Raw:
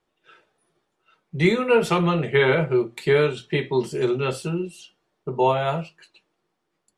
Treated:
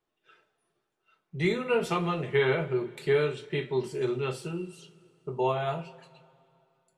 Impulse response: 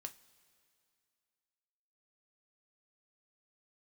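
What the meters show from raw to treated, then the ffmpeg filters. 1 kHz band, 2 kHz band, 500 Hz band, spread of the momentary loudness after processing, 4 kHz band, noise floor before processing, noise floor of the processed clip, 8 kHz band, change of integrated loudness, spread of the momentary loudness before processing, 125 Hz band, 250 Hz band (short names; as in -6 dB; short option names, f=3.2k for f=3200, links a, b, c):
-8.0 dB, -7.5 dB, -7.0 dB, 12 LU, -7.5 dB, -76 dBFS, -81 dBFS, -7.5 dB, -7.5 dB, 13 LU, -7.5 dB, -8.5 dB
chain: -filter_complex "[1:a]atrim=start_sample=2205[a];[0:a][a]afir=irnorm=-1:irlink=0,volume=-3dB"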